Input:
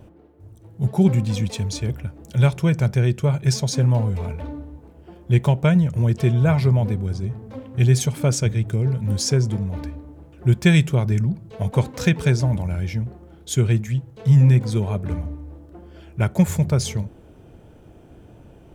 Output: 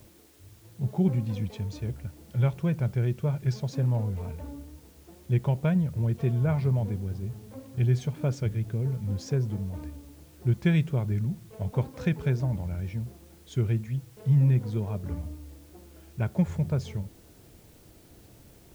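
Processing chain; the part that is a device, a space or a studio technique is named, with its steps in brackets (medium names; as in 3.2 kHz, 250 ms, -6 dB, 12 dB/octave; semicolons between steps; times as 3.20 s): cassette deck with a dirty head (tape spacing loss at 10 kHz 22 dB; wow and flutter; white noise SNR 32 dB); trim -7.5 dB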